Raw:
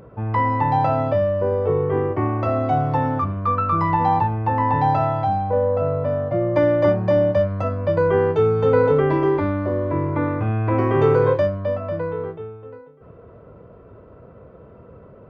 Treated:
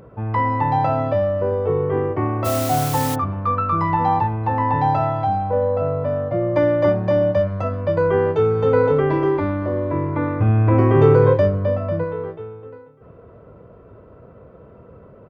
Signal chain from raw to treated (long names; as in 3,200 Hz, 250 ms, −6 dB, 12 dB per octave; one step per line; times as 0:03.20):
single-tap delay 386 ms −21 dB
0:02.44–0:03.14: background noise white −30 dBFS
0:10.40–0:12.04: low-shelf EQ 360 Hz +7 dB